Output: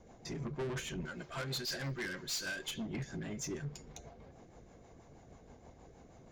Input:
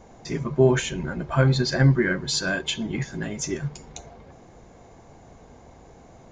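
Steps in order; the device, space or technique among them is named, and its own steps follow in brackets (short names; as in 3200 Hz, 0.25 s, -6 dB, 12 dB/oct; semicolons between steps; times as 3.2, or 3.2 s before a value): 1.05–2.71 tilt +3.5 dB/oct; overdriven rotary cabinet (tube stage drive 28 dB, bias 0.25; rotary speaker horn 6.3 Hz); gain -6 dB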